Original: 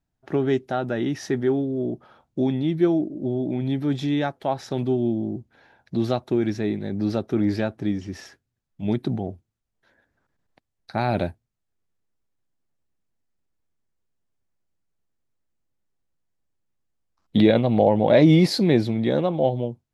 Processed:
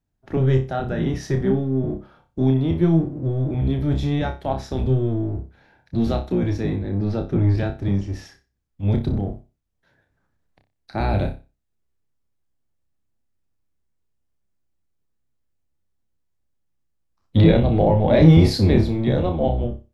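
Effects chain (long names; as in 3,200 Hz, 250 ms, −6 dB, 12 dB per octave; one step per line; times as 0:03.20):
sub-octave generator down 1 octave, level +4 dB
0:06.80–0:07.58: low-pass filter 3,100 Hz 6 dB per octave
on a send: flutter between parallel walls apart 5.2 metres, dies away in 0.29 s
on the sum: level −2 dB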